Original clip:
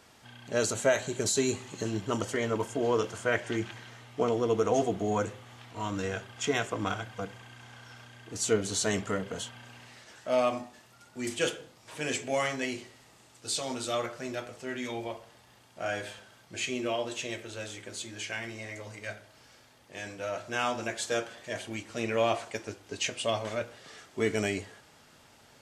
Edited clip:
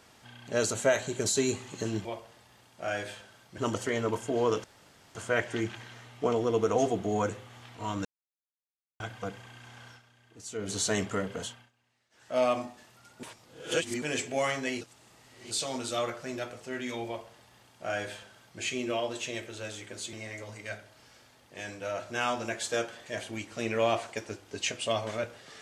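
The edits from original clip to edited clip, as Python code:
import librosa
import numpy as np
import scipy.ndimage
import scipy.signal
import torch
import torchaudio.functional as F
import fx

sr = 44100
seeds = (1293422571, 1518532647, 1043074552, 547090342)

y = fx.edit(x, sr, fx.insert_room_tone(at_s=3.11, length_s=0.51),
    fx.silence(start_s=6.01, length_s=0.95),
    fx.fade_down_up(start_s=7.85, length_s=0.82, db=-11.5, fade_s=0.13),
    fx.fade_down_up(start_s=9.39, length_s=0.95, db=-24.0, fade_s=0.28),
    fx.reverse_span(start_s=11.19, length_s=0.79),
    fx.reverse_span(start_s=12.77, length_s=0.7),
    fx.duplicate(start_s=15.03, length_s=1.53, to_s=2.05),
    fx.cut(start_s=18.09, length_s=0.42), tone=tone)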